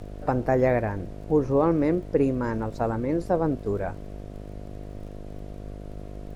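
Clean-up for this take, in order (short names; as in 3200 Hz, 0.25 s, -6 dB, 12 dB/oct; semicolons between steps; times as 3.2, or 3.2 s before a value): de-click; de-hum 50.7 Hz, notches 14; noise print and reduce 30 dB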